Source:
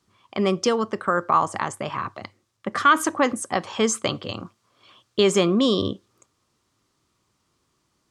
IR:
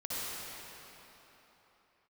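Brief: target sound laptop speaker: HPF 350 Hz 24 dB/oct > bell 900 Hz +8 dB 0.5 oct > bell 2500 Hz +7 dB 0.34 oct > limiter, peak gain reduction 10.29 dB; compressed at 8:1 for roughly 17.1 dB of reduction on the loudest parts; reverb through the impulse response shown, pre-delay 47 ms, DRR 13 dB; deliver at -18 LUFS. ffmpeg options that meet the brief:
-filter_complex "[0:a]acompressor=threshold=-30dB:ratio=8,asplit=2[a][b];[1:a]atrim=start_sample=2205,adelay=47[c];[b][c]afir=irnorm=-1:irlink=0,volume=-18dB[d];[a][d]amix=inputs=2:normalize=0,highpass=f=350:w=0.5412,highpass=f=350:w=1.3066,equalizer=f=900:t=o:w=0.5:g=8,equalizer=f=2.5k:t=o:w=0.34:g=7,volume=18dB,alimiter=limit=-4.5dB:level=0:latency=1"

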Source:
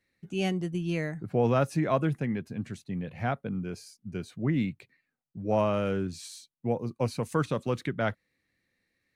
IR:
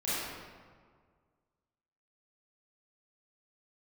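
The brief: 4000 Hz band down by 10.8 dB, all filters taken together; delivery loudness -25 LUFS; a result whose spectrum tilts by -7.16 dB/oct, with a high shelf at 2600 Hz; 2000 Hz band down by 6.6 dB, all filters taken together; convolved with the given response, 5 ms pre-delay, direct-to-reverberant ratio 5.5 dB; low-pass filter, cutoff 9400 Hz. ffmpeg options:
-filter_complex "[0:a]lowpass=9.4k,equalizer=f=2k:t=o:g=-4.5,highshelf=f=2.6k:g=-7,equalizer=f=4k:t=o:g=-7,asplit=2[a][b];[1:a]atrim=start_sample=2205,adelay=5[c];[b][c]afir=irnorm=-1:irlink=0,volume=-13.5dB[d];[a][d]amix=inputs=2:normalize=0,volume=5.5dB"

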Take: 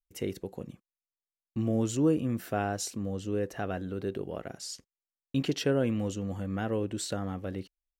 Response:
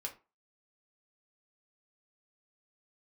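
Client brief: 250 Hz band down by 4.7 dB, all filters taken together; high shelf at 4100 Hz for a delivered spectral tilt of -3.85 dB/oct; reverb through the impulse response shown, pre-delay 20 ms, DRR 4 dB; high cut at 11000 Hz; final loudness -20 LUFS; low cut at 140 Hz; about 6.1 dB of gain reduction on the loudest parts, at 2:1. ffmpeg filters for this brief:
-filter_complex "[0:a]highpass=140,lowpass=11k,equalizer=f=250:t=o:g=-5.5,highshelf=f=4.1k:g=8.5,acompressor=threshold=-35dB:ratio=2,asplit=2[a][b];[1:a]atrim=start_sample=2205,adelay=20[c];[b][c]afir=irnorm=-1:irlink=0,volume=-2.5dB[d];[a][d]amix=inputs=2:normalize=0,volume=16dB"

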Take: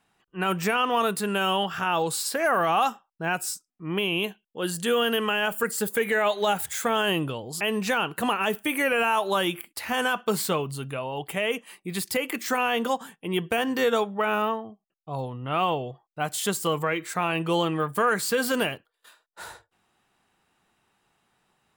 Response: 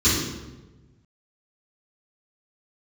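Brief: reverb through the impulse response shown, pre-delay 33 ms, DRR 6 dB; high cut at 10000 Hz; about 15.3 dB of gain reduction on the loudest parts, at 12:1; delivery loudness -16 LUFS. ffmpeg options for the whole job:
-filter_complex "[0:a]lowpass=10k,acompressor=threshold=-35dB:ratio=12,asplit=2[a][b];[1:a]atrim=start_sample=2205,adelay=33[c];[b][c]afir=irnorm=-1:irlink=0,volume=-23dB[d];[a][d]amix=inputs=2:normalize=0,volume=21dB"

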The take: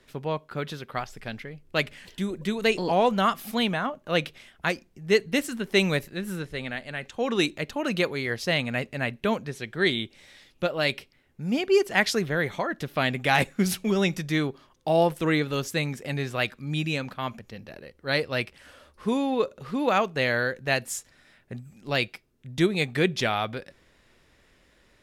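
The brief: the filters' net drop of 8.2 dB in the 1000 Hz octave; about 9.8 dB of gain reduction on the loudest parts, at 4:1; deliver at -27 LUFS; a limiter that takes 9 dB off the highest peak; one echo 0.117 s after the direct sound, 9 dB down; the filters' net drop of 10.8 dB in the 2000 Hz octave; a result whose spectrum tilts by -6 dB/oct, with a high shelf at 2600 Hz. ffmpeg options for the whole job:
-af "equalizer=f=1k:t=o:g=-9,equalizer=f=2k:t=o:g=-7,highshelf=f=2.6k:g=-8.5,acompressor=threshold=-30dB:ratio=4,alimiter=level_in=4dB:limit=-24dB:level=0:latency=1,volume=-4dB,aecho=1:1:117:0.355,volume=11.5dB"

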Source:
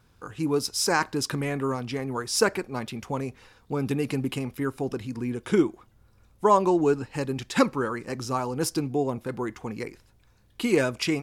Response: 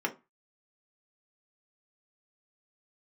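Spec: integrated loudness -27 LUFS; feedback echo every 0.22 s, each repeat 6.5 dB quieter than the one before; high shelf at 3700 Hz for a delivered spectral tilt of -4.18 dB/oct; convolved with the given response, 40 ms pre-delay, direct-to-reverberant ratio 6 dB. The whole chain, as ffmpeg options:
-filter_complex "[0:a]highshelf=f=3.7k:g=4.5,aecho=1:1:220|440|660|880|1100|1320:0.473|0.222|0.105|0.0491|0.0231|0.0109,asplit=2[a][b];[1:a]atrim=start_sample=2205,adelay=40[c];[b][c]afir=irnorm=-1:irlink=0,volume=-13dB[d];[a][d]amix=inputs=2:normalize=0,volume=-2.5dB"

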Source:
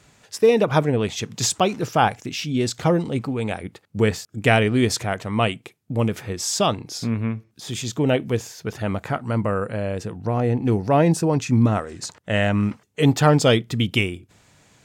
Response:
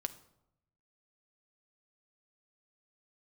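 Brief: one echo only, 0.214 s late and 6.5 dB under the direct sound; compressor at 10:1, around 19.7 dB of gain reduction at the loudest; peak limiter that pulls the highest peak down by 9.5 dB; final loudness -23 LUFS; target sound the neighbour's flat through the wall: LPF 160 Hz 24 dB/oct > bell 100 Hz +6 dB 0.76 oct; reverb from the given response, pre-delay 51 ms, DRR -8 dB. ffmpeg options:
-filter_complex "[0:a]acompressor=threshold=-32dB:ratio=10,alimiter=level_in=4.5dB:limit=-24dB:level=0:latency=1,volume=-4.5dB,aecho=1:1:214:0.473,asplit=2[a][b];[1:a]atrim=start_sample=2205,adelay=51[c];[b][c]afir=irnorm=-1:irlink=0,volume=8.5dB[d];[a][d]amix=inputs=2:normalize=0,lowpass=f=160:w=0.5412,lowpass=f=160:w=1.3066,equalizer=f=100:t=o:w=0.76:g=6,volume=9.5dB"

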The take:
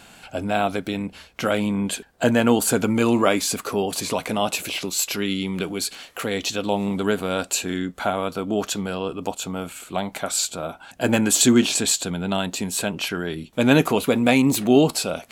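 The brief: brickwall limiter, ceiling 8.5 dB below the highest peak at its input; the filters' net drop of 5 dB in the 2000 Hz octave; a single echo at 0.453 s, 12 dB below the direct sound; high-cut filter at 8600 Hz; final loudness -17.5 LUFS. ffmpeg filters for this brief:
-af "lowpass=8.6k,equalizer=f=2k:t=o:g=-7,alimiter=limit=-12.5dB:level=0:latency=1,aecho=1:1:453:0.251,volume=7.5dB"

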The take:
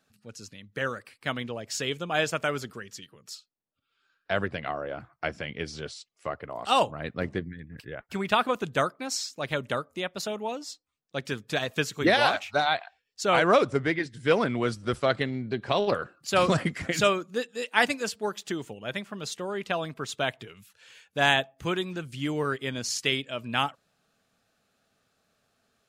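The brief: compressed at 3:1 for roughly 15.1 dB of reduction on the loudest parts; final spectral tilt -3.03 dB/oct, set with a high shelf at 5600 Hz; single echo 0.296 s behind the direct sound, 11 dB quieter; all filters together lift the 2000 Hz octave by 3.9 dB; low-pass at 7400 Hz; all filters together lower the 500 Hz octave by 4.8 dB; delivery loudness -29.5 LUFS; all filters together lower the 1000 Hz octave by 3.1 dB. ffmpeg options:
-af "lowpass=7.4k,equalizer=f=500:t=o:g=-5,equalizer=f=1k:t=o:g=-5,equalizer=f=2k:t=o:g=6,highshelf=f=5.6k:g=8,acompressor=threshold=-36dB:ratio=3,aecho=1:1:296:0.282,volume=8dB"

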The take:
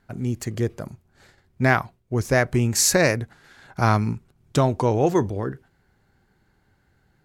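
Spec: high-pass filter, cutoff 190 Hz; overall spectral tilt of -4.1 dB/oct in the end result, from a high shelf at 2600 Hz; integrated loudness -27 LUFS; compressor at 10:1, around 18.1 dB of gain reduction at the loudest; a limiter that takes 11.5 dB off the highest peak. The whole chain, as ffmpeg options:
-af "highpass=190,highshelf=f=2.6k:g=8.5,acompressor=threshold=-27dB:ratio=10,volume=10dB,alimiter=limit=-14dB:level=0:latency=1"

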